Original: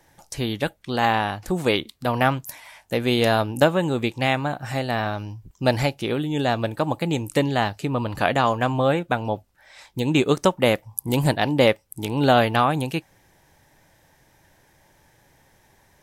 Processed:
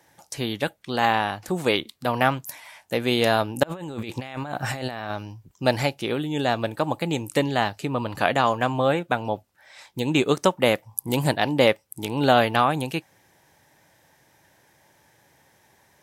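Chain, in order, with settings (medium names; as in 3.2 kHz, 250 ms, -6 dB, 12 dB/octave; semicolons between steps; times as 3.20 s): high-pass 89 Hz; bass shelf 320 Hz -3.5 dB; 3.63–5.10 s: compressor with a negative ratio -33 dBFS, ratio -1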